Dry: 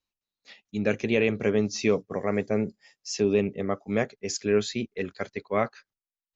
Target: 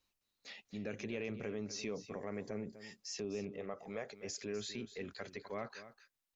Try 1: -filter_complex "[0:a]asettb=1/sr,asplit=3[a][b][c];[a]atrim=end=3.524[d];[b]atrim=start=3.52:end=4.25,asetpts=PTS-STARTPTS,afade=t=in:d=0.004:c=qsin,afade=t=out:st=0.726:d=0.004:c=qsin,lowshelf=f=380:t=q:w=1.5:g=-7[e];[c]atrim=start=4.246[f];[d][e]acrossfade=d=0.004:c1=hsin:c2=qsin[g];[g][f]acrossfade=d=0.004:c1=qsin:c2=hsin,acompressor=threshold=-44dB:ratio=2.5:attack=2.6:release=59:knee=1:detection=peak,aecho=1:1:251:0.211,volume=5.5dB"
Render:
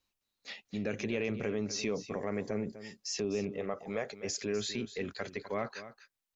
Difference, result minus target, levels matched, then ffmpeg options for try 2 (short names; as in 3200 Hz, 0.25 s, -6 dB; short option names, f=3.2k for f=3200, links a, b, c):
compressor: peak gain reduction -7 dB
-filter_complex "[0:a]asettb=1/sr,asplit=3[a][b][c];[a]atrim=end=3.524[d];[b]atrim=start=3.52:end=4.25,asetpts=PTS-STARTPTS,afade=t=in:d=0.004:c=qsin,afade=t=out:st=0.726:d=0.004:c=qsin,lowshelf=f=380:t=q:w=1.5:g=-7[e];[c]atrim=start=4.246[f];[d][e]acrossfade=d=0.004:c1=hsin:c2=qsin[g];[g][f]acrossfade=d=0.004:c1=qsin:c2=hsin,acompressor=threshold=-56dB:ratio=2.5:attack=2.6:release=59:knee=1:detection=peak,aecho=1:1:251:0.211,volume=5.5dB"